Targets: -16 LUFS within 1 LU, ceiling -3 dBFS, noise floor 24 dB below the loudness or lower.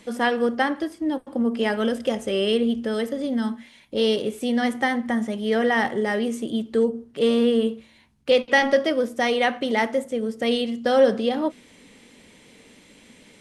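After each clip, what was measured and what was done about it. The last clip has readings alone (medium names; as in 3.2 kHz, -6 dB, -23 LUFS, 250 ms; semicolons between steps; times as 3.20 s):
loudness -23.0 LUFS; peak level -6.5 dBFS; loudness target -16.0 LUFS
-> trim +7 dB; peak limiter -3 dBFS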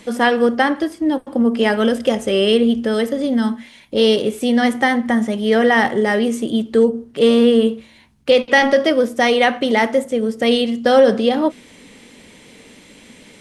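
loudness -16.5 LUFS; peak level -3.0 dBFS; noise floor -46 dBFS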